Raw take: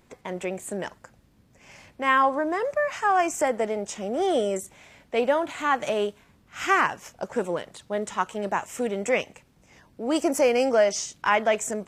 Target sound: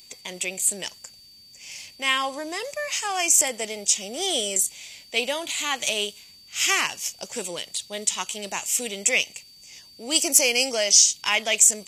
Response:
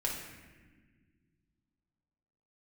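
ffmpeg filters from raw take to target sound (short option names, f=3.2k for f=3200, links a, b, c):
-af "aexciter=amount=13.1:drive=2.9:freq=2.3k,aeval=exprs='val(0)+0.00891*sin(2*PI*4600*n/s)':c=same,volume=-7dB"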